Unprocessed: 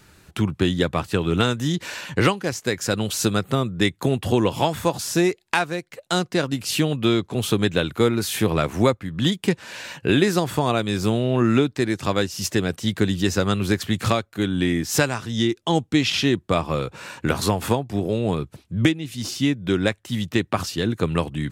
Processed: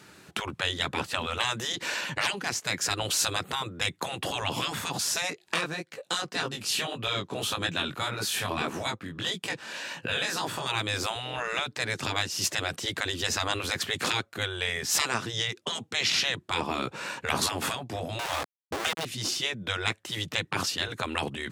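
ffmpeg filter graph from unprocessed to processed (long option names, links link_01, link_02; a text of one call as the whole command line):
ffmpeg -i in.wav -filter_complex "[0:a]asettb=1/sr,asplit=3[link_01][link_02][link_03];[link_01]atrim=end=5.304[link_04];[link_02]atrim=start=5.3:end=10.66,asetpts=PTS-STARTPTS,afade=type=in:duration=0.004:curve=qsin,afade=type=out:start_time=5.356:duration=0.004:curve=qsin,bandreject=frequency=2100:width=15,acompressor=mode=upward:threshold=-37dB:ratio=2.5:attack=3.2:release=140:knee=2.83:detection=peak,flanger=delay=17.5:depth=5.1:speed=1.7[link_05];[link_03]atrim=start=10.656[link_06];[link_04][link_05]acrossfade=duration=0.004:curve1=hsin:curve2=qsin[link_07];[link_07][link_06]acrossfade=duration=0.004:curve1=qsin:curve2=hsin,asettb=1/sr,asplit=3[link_08][link_09][link_10];[link_08]atrim=end=18.194[link_11];[link_09]atrim=start=18.19:end=19.05,asetpts=PTS-STARTPTS,afade=type=in:duration=0.004:curve=qsin,afade=type=out:start_time=0.856:duration=0.004:curve=qsin,equalizer=frequency=200:width=0.54:gain=5.5,aeval=exprs='val(0)*gte(abs(val(0)),0.0668)':channel_layout=same[link_12];[link_10]atrim=start=19.046[link_13];[link_11][link_12]acrossfade=duration=0.004:curve1=hsin:curve2=qsin[link_14];[link_14][link_13]acrossfade=duration=0.004:curve1=qsin:curve2=hsin,highpass=170,afftfilt=real='re*lt(hypot(re,im),0.178)':imag='im*lt(hypot(re,im),0.178)':win_size=1024:overlap=0.75,highshelf=frequency=12000:gain=-8.5,volume=2dB" out.wav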